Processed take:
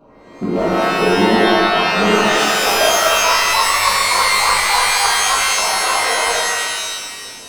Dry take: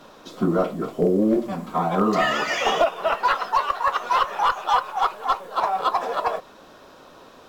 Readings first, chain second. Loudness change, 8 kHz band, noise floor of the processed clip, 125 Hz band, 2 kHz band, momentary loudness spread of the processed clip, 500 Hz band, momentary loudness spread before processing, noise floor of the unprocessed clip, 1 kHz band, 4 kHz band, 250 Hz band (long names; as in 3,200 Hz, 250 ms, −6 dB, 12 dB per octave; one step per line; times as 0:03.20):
+8.5 dB, +25.5 dB, −38 dBFS, +4.0 dB, +13.5 dB, 7 LU, +6.5 dB, 6 LU, −48 dBFS, +5.5 dB, +16.5 dB, +4.5 dB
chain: adaptive Wiener filter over 25 samples
reverb with rising layers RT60 1.7 s, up +12 semitones, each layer −2 dB, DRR −6.5 dB
level −1.5 dB